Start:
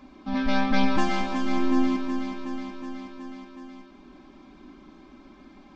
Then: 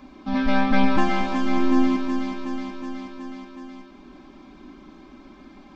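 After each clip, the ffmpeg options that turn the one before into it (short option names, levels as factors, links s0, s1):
-filter_complex "[0:a]acrossover=split=3200[s0][s1];[s1]acompressor=threshold=0.00501:ratio=4:attack=1:release=60[s2];[s0][s2]amix=inputs=2:normalize=0,volume=1.5"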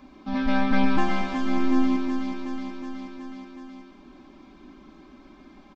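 -af "aecho=1:1:133:0.299,volume=0.668"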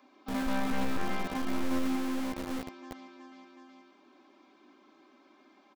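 -filter_complex "[0:a]acrossover=split=280|720|2100[s0][s1][s2][s3];[s0]acrusher=bits=4:mix=0:aa=0.000001[s4];[s4][s1][s2][s3]amix=inputs=4:normalize=0,volume=7.5,asoftclip=hard,volume=0.133,volume=0.447"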